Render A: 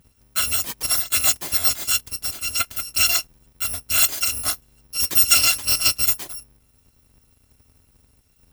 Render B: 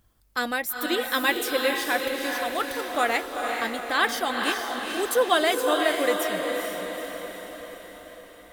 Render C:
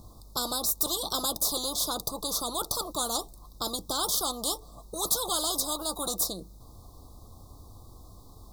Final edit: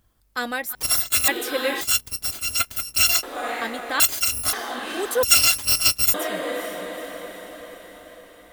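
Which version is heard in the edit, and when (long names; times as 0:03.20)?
B
0:00.75–0:01.28: punch in from A
0:01.81–0:03.23: punch in from A
0:04.00–0:04.53: punch in from A
0:05.23–0:06.14: punch in from A
not used: C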